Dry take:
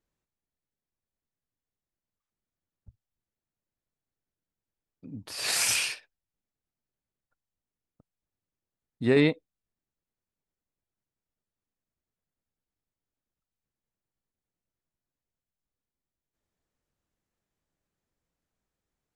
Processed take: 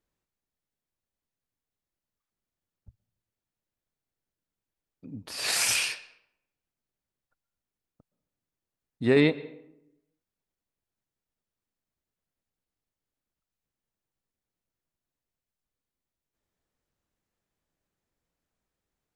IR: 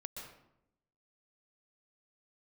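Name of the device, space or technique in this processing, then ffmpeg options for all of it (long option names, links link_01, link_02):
filtered reverb send: -filter_complex "[0:a]asplit=2[link_01][link_02];[link_02]highpass=200,lowpass=6300[link_03];[1:a]atrim=start_sample=2205[link_04];[link_03][link_04]afir=irnorm=-1:irlink=0,volume=-11.5dB[link_05];[link_01][link_05]amix=inputs=2:normalize=0"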